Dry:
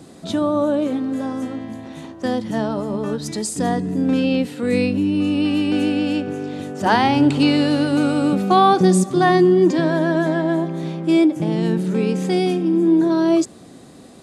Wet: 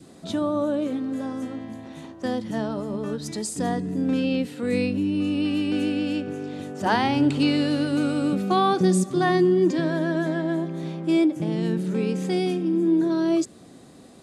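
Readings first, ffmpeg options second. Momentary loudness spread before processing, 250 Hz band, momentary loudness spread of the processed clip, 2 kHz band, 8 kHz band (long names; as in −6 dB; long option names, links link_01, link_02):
11 LU, −5.0 dB, 10 LU, −5.5 dB, −5.0 dB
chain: -af "adynamicequalizer=threshold=0.0178:dfrequency=850:dqfactor=1.9:tfrequency=850:tqfactor=1.9:attack=5:release=100:ratio=0.375:range=3:mode=cutabove:tftype=bell,volume=-5dB"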